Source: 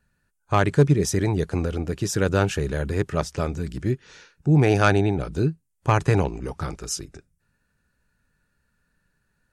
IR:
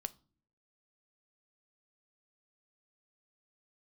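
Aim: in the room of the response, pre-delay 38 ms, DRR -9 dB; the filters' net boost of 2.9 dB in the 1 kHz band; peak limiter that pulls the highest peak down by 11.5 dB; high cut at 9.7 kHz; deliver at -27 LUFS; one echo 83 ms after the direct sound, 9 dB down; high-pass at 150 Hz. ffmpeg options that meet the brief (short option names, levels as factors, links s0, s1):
-filter_complex "[0:a]highpass=150,lowpass=9700,equalizer=f=1000:t=o:g=4,alimiter=limit=0.188:level=0:latency=1,aecho=1:1:83:0.355,asplit=2[s0][s1];[1:a]atrim=start_sample=2205,adelay=38[s2];[s1][s2]afir=irnorm=-1:irlink=0,volume=3.55[s3];[s0][s3]amix=inputs=2:normalize=0,volume=0.355"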